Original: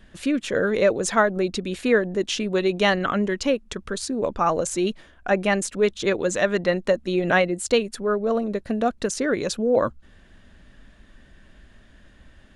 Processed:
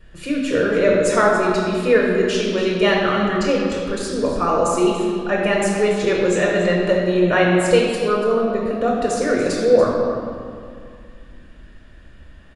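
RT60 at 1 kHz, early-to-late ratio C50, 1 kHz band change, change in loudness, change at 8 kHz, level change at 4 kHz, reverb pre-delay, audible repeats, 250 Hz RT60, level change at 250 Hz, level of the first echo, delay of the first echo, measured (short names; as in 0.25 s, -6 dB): 2.3 s, 0.0 dB, +4.5 dB, +5.0 dB, +0.5 dB, +3.0 dB, 3 ms, 1, 2.8 s, +5.0 dB, -11.5 dB, 0.288 s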